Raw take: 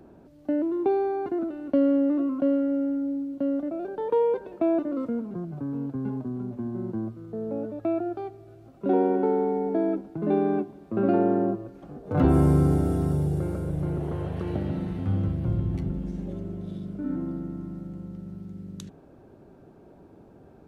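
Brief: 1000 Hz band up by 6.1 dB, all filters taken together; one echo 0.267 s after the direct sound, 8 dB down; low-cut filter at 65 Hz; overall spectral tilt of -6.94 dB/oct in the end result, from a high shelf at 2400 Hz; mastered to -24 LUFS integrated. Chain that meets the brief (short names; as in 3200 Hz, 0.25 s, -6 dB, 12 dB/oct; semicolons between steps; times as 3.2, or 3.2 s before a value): HPF 65 Hz; bell 1000 Hz +8 dB; high shelf 2400 Hz +5 dB; echo 0.267 s -8 dB; gain +1.5 dB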